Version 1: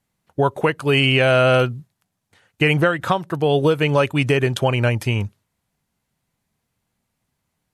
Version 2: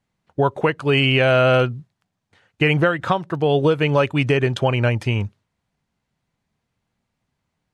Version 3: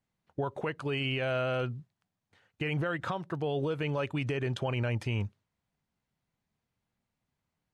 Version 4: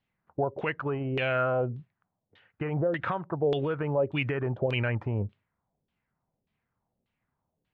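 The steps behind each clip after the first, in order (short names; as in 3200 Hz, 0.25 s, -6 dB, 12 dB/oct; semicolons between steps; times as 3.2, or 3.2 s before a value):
air absorption 75 m
limiter -15 dBFS, peak gain reduction 9.5 dB; gain -8.5 dB
LFO low-pass saw down 1.7 Hz 420–3500 Hz; gain +1.5 dB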